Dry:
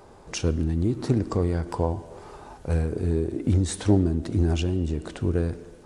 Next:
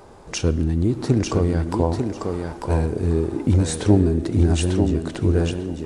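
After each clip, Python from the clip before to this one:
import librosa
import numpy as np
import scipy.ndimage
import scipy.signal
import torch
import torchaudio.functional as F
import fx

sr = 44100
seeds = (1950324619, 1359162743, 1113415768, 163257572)

y = fx.echo_thinned(x, sr, ms=895, feedback_pct=17, hz=180.0, wet_db=-3.5)
y = F.gain(torch.from_numpy(y), 4.0).numpy()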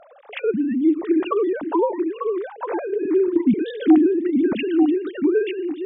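y = fx.sine_speech(x, sr)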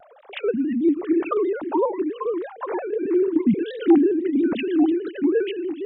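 y = fx.vibrato_shape(x, sr, shape='square', rate_hz=6.2, depth_cents=100.0)
y = F.gain(torch.from_numpy(y), -1.5).numpy()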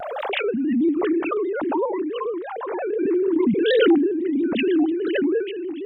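y = fx.pre_swell(x, sr, db_per_s=22.0)
y = F.gain(torch.from_numpy(y), -2.5).numpy()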